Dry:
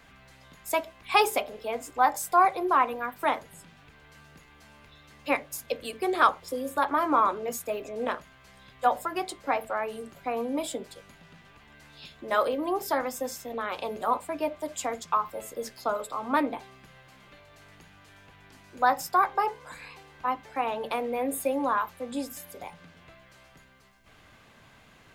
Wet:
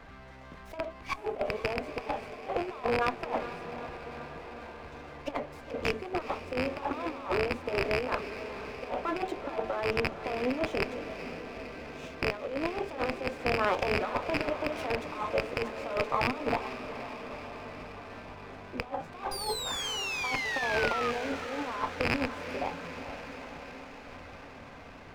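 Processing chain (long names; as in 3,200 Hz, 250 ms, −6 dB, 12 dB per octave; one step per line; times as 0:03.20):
loose part that buzzes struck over −44 dBFS, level −15 dBFS
RIAA equalisation playback
treble cut that deepens with the level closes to 1,400 Hz, closed at −19.5 dBFS
bass and treble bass −14 dB, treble −10 dB
compressor whose output falls as the input rises −32 dBFS, ratio −0.5
sound drawn into the spectrogram fall, 0:19.31–0:21.11, 1,200–4,900 Hz −34 dBFS
feedback delay with all-pass diffusion 458 ms, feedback 73%, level −11 dB
on a send at −19 dB: convolution reverb RT60 0.20 s, pre-delay 3 ms
on the sum: windowed peak hold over 5 samples
level +1 dB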